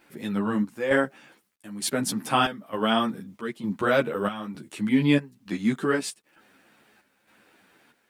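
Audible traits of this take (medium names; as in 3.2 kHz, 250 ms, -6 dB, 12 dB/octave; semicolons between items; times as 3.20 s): chopped level 1.1 Hz, depth 65%, duty 70%; a quantiser's noise floor 12-bit, dither none; a shimmering, thickened sound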